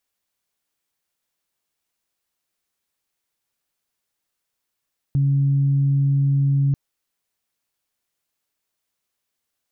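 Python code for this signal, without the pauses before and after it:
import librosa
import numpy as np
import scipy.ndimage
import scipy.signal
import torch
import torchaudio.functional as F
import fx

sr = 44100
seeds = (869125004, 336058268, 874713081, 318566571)

y = fx.additive_steady(sr, length_s=1.59, hz=139.0, level_db=-15.0, upper_db=(-19,))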